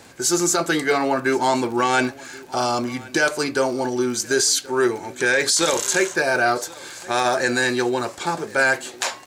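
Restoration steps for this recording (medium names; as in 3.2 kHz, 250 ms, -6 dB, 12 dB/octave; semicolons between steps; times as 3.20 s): de-click; inverse comb 1078 ms -21.5 dB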